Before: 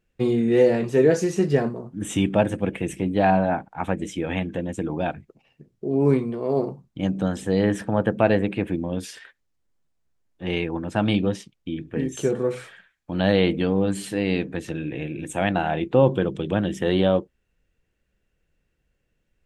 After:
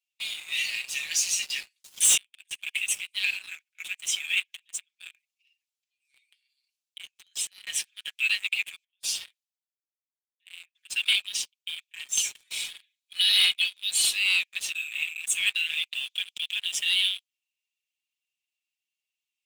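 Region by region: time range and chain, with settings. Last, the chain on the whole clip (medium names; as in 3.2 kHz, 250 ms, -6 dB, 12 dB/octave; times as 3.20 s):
1.84–2.51 s: treble shelf 2.4 kHz +8 dB + inverted gate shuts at -14 dBFS, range -31 dB + three bands compressed up and down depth 70%
4.39–7.67 s: high-pass 230 Hz 6 dB/octave + compression 8:1, threshold -34 dBFS
8.84–10.75 s: compression 10:1, threshold -41 dBFS + three bands expanded up and down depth 70%
12.47–14.17 s: peaking EQ 3.7 kHz +6 dB 0.26 oct + comb 2.4 ms, depth 40%
whole clip: steep high-pass 2.4 kHz 48 dB/octave; comb 5.4 ms, depth 85%; waveshaping leveller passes 3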